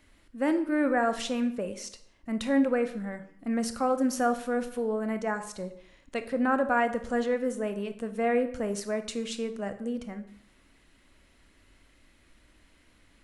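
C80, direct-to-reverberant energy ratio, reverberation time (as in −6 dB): 15.5 dB, 8.5 dB, 0.65 s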